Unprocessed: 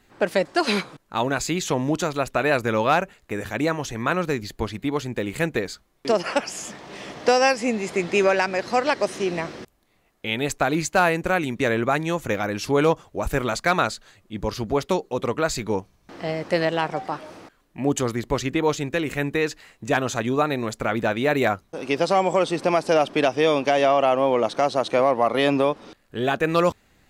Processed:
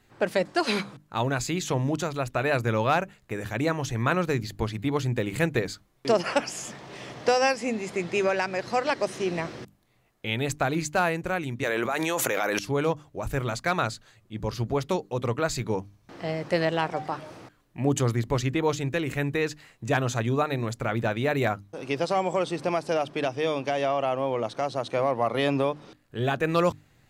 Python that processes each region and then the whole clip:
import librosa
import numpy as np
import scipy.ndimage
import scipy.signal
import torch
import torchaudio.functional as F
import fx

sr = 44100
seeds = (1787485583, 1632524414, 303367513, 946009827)

y = fx.chain(x, sr, fx.highpass(hz=430.0, slope=12),
    fx.high_shelf(hz=8400.0, db=6.0),
    fx.env_flatten(amount_pct=100), at=(11.63, 12.59))
y = fx.peak_eq(y, sr, hz=120.0, db=10.0, octaves=0.57)
y = fx.rider(y, sr, range_db=10, speed_s=2.0)
y = fx.hum_notches(y, sr, base_hz=50, count=6)
y = y * 10.0 ** (-5.5 / 20.0)